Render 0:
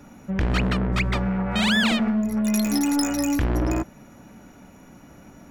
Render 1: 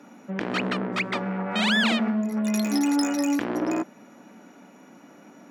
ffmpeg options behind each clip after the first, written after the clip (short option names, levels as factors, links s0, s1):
-af "highpass=f=210:w=0.5412,highpass=f=210:w=1.3066,highshelf=f=8900:g=-11"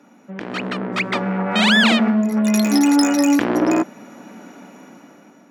-af "dynaudnorm=f=370:g=5:m=4.47,volume=0.794"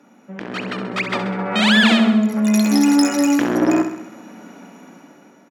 -af "aecho=1:1:66|132|198|264|330|396|462:0.355|0.199|0.111|0.0623|0.0349|0.0195|0.0109,volume=0.891"